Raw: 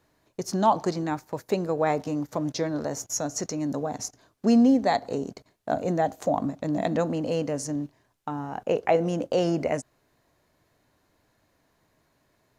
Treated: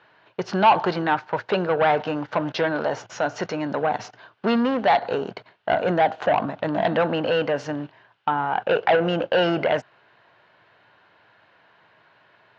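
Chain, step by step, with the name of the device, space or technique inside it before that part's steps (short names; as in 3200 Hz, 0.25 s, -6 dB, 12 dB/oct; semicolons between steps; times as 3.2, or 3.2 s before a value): overdrive pedal into a guitar cabinet (overdrive pedal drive 21 dB, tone 3900 Hz, clips at -8.5 dBFS; speaker cabinet 85–3900 Hz, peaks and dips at 110 Hz +8 dB, 180 Hz +3 dB, 270 Hz -7 dB, 880 Hz +4 dB, 1500 Hz +8 dB, 2900 Hz +7 dB); gain -2.5 dB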